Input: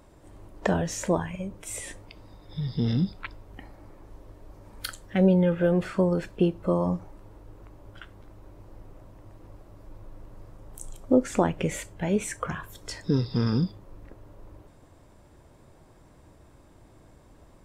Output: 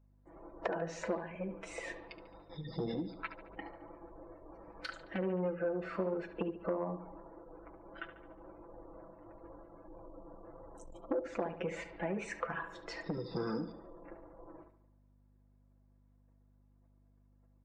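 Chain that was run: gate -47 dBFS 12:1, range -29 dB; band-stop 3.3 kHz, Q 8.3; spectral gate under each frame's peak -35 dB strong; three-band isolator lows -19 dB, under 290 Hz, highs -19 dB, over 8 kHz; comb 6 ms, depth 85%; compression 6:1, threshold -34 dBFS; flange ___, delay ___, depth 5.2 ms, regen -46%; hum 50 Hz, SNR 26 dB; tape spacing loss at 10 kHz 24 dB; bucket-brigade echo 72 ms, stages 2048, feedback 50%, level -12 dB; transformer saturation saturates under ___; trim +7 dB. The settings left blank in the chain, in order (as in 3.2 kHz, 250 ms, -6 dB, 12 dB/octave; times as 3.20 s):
1.6 Hz, 1.1 ms, 540 Hz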